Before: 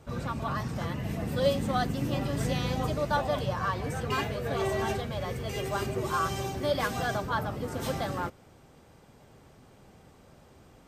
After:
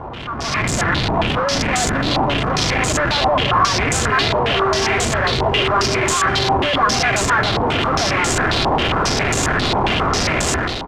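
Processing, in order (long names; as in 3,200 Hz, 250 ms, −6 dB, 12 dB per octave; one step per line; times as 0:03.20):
sign of each sample alone
comb filter 2.9 ms, depth 62%
soft clipping −37 dBFS, distortion −9 dB
automatic gain control gain up to 14 dB
low-pass on a step sequencer 7.4 Hz 910–7,300 Hz
level +5.5 dB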